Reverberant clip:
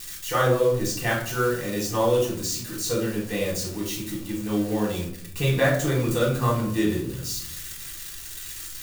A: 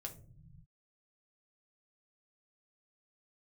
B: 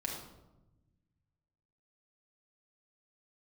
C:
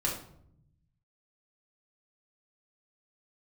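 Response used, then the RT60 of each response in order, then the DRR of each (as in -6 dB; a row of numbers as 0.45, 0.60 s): C; not exponential, 1.0 s, 0.70 s; 1.5, -2.0, -4.5 dB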